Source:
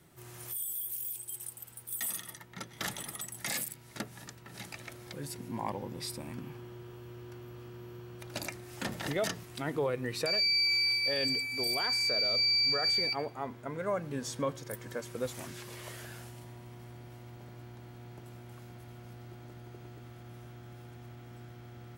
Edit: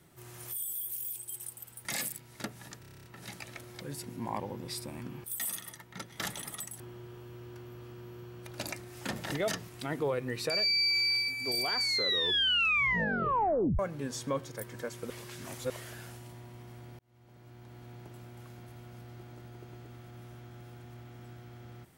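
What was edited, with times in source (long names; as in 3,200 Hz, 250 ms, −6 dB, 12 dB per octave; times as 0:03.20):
0:01.85–0:03.41: move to 0:06.56
0:04.36: stutter 0.03 s, 9 plays
0:11.04–0:11.40: remove
0:11.91: tape stop 2.00 s
0:15.22–0:15.82: reverse
0:17.11–0:17.97: fade in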